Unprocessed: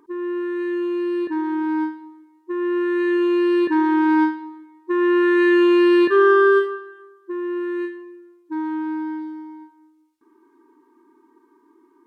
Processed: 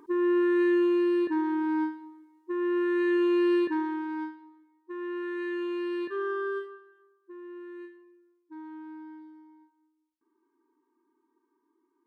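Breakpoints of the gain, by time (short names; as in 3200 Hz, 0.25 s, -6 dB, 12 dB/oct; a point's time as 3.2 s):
0.62 s +1.5 dB
1.62 s -5.5 dB
3.54 s -5.5 dB
4.08 s -17.5 dB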